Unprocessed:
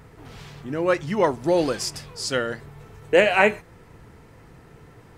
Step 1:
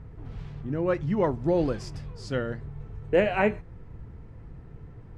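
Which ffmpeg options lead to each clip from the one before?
ffmpeg -i in.wav -af "aemphasis=mode=reproduction:type=riaa,volume=-7.5dB" out.wav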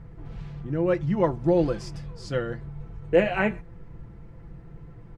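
ffmpeg -i in.wav -af "aecho=1:1:5.9:0.52" out.wav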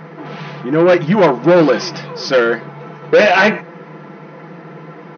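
ffmpeg -i in.wav -filter_complex "[0:a]asplit=2[link_01][link_02];[link_02]highpass=frequency=720:poles=1,volume=25dB,asoftclip=type=tanh:threshold=-7.5dB[link_03];[link_01][link_03]amix=inputs=2:normalize=0,lowpass=frequency=3300:poles=1,volume=-6dB,afftfilt=real='re*between(b*sr/4096,150,6400)':imag='im*between(b*sr/4096,150,6400)':win_size=4096:overlap=0.75,volume=6dB" out.wav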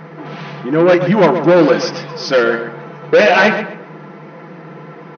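ffmpeg -i in.wav -filter_complex "[0:a]asplit=2[link_01][link_02];[link_02]adelay=129,lowpass=frequency=3200:poles=1,volume=-9dB,asplit=2[link_03][link_04];[link_04]adelay=129,lowpass=frequency=3200:poles=1,volume=0.31,asplit=2[link_05][link_06];[link_06]adelay=129,lowpass=frequency=3200:poles=1,volume=0.31,asplit=2[link_07][link_08];[link_08]adelay=129,lowpass=frequency=3200:poles=1,volume=0.31[link_09];[link_01][link_03][link_05][link_07][link_09]amix=inputs=5:normalize=0" out.wav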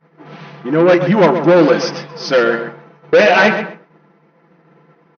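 ffmpeg -i in.wav -af "agate=range=-33dB:threshold=-22dB:ratio=3:detection=peak" out.wav

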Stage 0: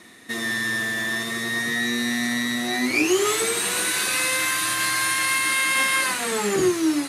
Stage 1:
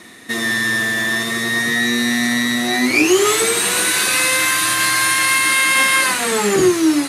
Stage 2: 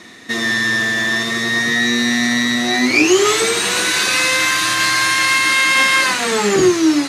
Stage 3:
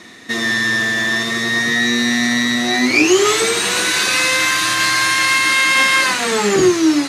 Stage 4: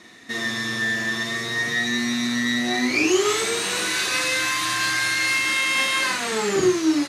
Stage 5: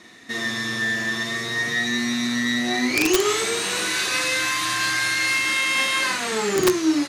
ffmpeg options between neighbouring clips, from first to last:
ffmpeg -i in.wav -af "acontrast=23,volume=2dB" out.wav
ffmpeg -i in.wav -af "highshelf=frequency=7900:width_type=q:width=1.5:gain=-8,volume=1dB" out.wav
ffmpeg -i in.wav -af anull out.wav
ffmpeg -i in.wav -filter_complex "[0:a]asplit=2[link_01][link_02];[link_02]adelay=41,volume=-4.5dB[link_03];[link_01][link_03]amix=inputs=2:normalize=0,volume=-8.5dB" out.wav
ffmpeg -i in.wav -af "aeval=exprs='(mod(3.35*val(0)+1,2)-1)/3.35':channel_layout=same" out.wav

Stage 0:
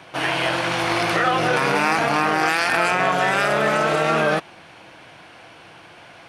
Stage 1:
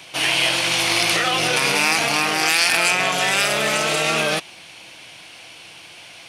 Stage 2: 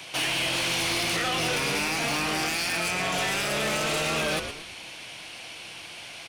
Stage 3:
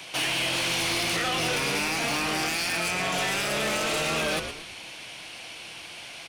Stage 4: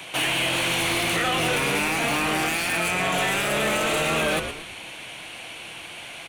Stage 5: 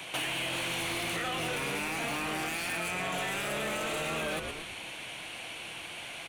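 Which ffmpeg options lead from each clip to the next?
ffmpeg -i in.wav -af "aexciter=amount=4.3:drive=5.2:freq=2200,volume=-3.5dB" out.wav
ffmpeg -i in.wav -filter_complex "[0:a]acrossover=split=390[link_01][link_02];[link_02]acompressor=threshold=-21dB:ratio=6[link_03];[link_01][link_03]amix=inputs=2:normalize=0,asplit=2[link_04][link_05];[link_05]asplit=4[link_06][link_07][link_08][link_09];[link_06]adelay=115,afreqshift=-83,volume=-11dB[link_10];[link_07]adelay=230,afreqshift=-166,volume=-19.9dB[link_11];[link_08]adelay=345,afreqshift=-249,volume=-28.7dB[link_12];[link_09]adelay=460,afreqshift=-332,volume=-37.6dB[link_13];[link_10][link_11][link_12][link_13]amix=inputs=4:normalize=0[link_14];[link_04][link_14]amix=inputs=2:normalize=0,asoftclip=type=tanh:threshold=-22dB" out.wav
ffmpeg -i in.wav -af "bandreject=frequency=50:width_type=h:width=6,bandreject=frequency=100:width_type=h:width=6,bandreject=frequency=150:width_type=h:width=6" out.wav
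ffmpeg -i in.wav -af "equalizer=frequency=5100:width_type=o:width=0.55:gain=-12,volume=4.5dB" out.wav
ffmpeg -i in.wav -af "acompressor=threshold=-28dB:ratio=5,volume=-3.5dB" out.wav

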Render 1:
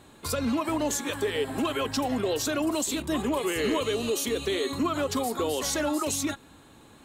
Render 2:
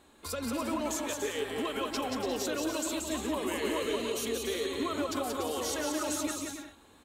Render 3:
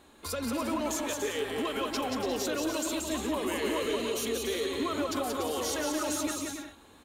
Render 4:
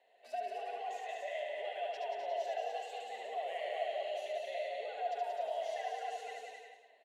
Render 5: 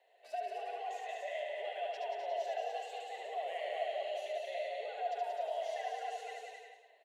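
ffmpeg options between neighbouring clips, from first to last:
ffmpeg -i in.wav -af "equalizer=frequency=130:width=2.3:gain=-14.5,aecho=1:1:180|288|352.8|391.7|415:0.631|0.398|0.251|0.158|0.1,volume=-6.5dB" out.wav
ffmpeg -i in.wav -filter_complex "[0:a]bandreject=frequency=7900:width=17,asplit=2[link_01][link_02];[link_02]asoftclip=type=hard:threshold=-37dB,volume=-8dB[link_03];[link_01][link_03]amix=inputs=2:normalize=0" out.wav
ffmpeg -i in.wav -filter_complex "[0:a]asplit=3[link_01][link_02][link_03];[link_01]bandpass=frequency=530:width_type=q:width=8,volume=0dB[link_04];[link_02]bandpass=frequency=1840:width_type=q:width=8,volume=-6dB[link_05];[link_03]bandpass=frequency=2480:width_type=q:width=8,volume=-9dB[link_06];[link_04][link_05][link_06]amix=inputs=3:normalize=0,afreqshift=160,aecho=1:1:72.89|256.6:0.708|0.316" out.wav
ffmpeg -i in.wav -af "highpass=frequency=330:width=0.5412,highpass=frequency=330:width=1.3066" out.wav

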